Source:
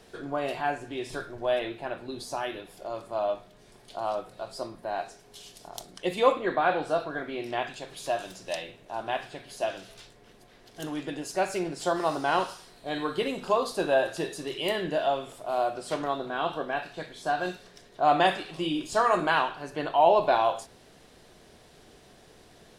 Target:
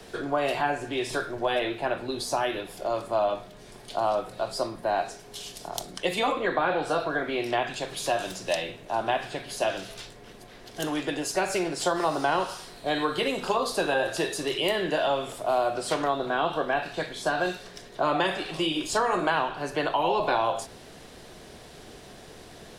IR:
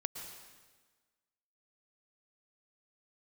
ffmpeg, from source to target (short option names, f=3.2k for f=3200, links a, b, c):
-filter_complex "[0:a]afftfilt=real='re*lt(hypot(re,im),0.562)':imag='im*lt(hypot(re,im),0.562)':win_size=1024:overlap=0.75,acrossover=split=130|320|700[a][b][c][d];[a]acompressor=threshold=-53dB:ratio=4[e];[b]acompressor=threshold=-49dB:ratio=4[f];[c]acompressor=threshold=-36dB:ratio=4[g];[d]acompressor=threshold=-35dB:ratio=4[h];[e][f][g][h]amix=inputs=4:normalize=0,volume=8dB"